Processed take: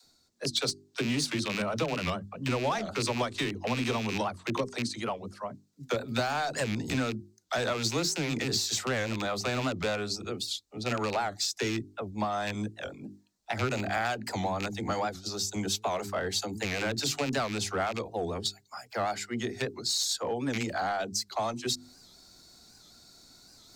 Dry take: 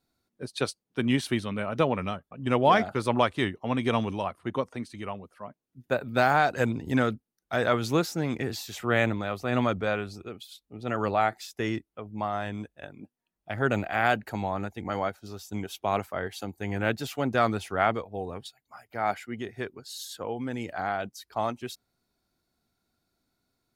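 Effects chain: rattling part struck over -31 dBFS, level -23 dBFS; band shelf 5600 Hz +12 dB 1.3 oct; notches 50/100/150/200/250/300/350/400 Hz; in parallel at -3.5 dB: overloaded stage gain 27 dB; on the sum: compressor 10:1, threshold -26 dBFS, peak gain reduction 12.5 dB; dispersion lows, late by 44 ms, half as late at 350 Hz; reverse; upward compressor, threshold -43 dBFS; reverse; record warp 78 rpm, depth 160 cents

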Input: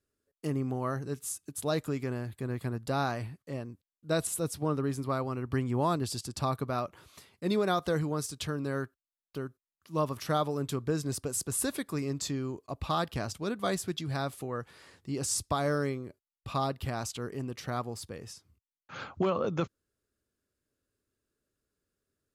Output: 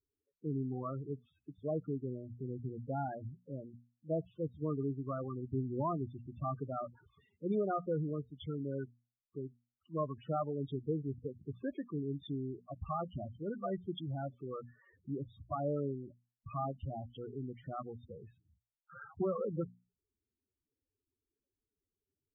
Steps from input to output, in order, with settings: downsampling 8000 Hz; notches 60/120/180/240 Hz; loudest bins only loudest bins 8; gain -4.5 dB

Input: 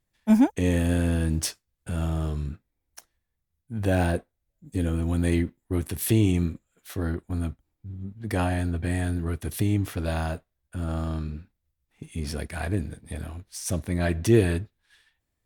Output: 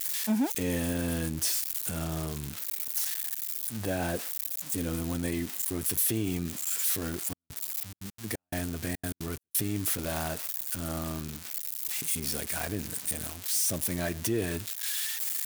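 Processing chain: switching spikes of -21 dBFS; HPF 71 Hz 12 dB/oct; low shelf 120 Hz -9 dB; limiter -17.5 dBFS, peak gain reduction 8.5 dB; 7.2–9.97 step gate "xx..xxxxx.x." 176 bpm -60 dB; gain -2 dB

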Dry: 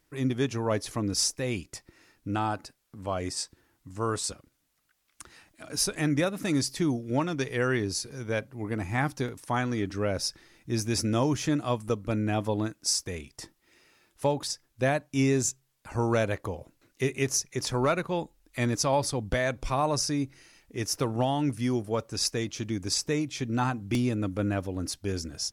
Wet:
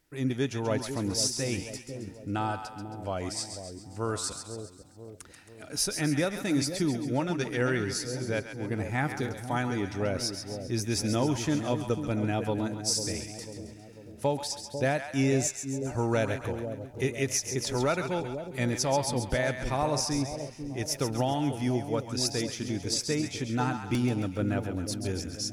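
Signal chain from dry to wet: notch 1100 Hz, Q 7.6; on a send: split-band echo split 700 Hz, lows 0.495 s, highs 0.135 s, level -8 dB; on the sum: gain -1.5 dB

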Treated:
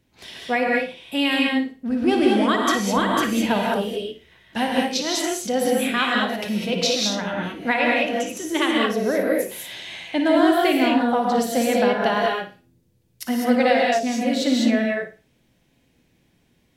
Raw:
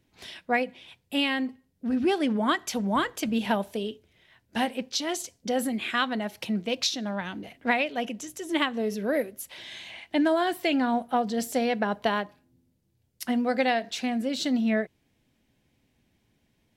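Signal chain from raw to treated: flutter echo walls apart 9.7 m, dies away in 0.32 s; spectral gain 13.77–14.06, 690–4500 Hz -12 dB; non-linear reverb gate 0.23 s rising, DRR -2 dB; gain +2.5 dB

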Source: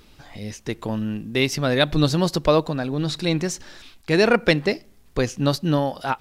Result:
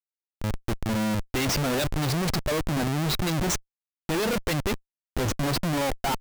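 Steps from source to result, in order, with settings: per-bin expansion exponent 1.5; Schmitt trigger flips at -34 dBFS

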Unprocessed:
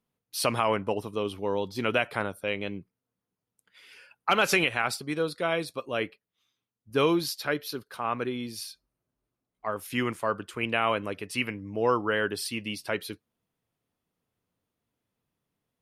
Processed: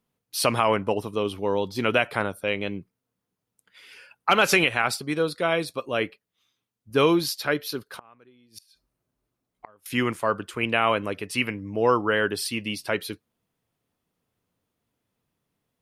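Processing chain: 7.86–9.86 flipped gate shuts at -26 dBFS, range -28 dB; gain +4 dB

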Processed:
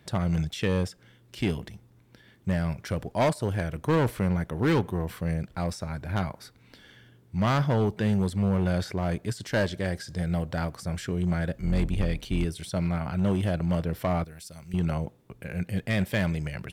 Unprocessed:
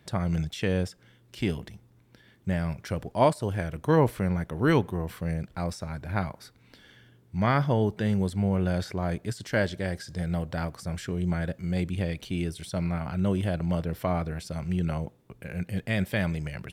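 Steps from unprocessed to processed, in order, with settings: 11.53–12.45 octaver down 2 oct, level 0 dB; 14.24–14.74 pre-emphasis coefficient 0.8; overloaded stage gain 20.5 dB; gain +1.5 dB

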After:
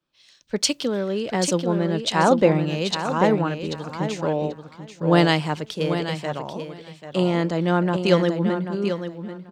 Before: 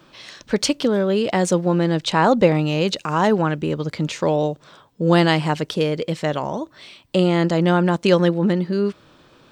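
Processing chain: on a send: feedback echo 0.788 s, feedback 29%, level -6 dB; on the sum: three-band expander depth 70%; gain -4.5 dB

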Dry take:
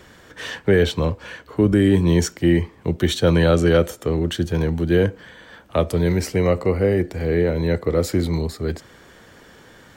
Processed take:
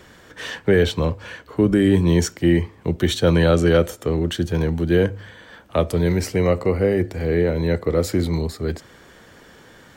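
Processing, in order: de-hum 50.46 Hz, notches 2

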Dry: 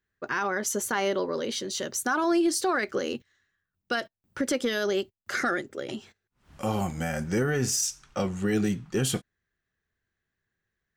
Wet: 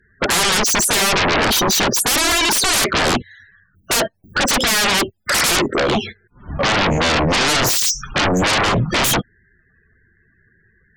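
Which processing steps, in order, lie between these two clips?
loudest bins only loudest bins 32; sine folder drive 19 dB, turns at -17 dBFS; gain +4 dB

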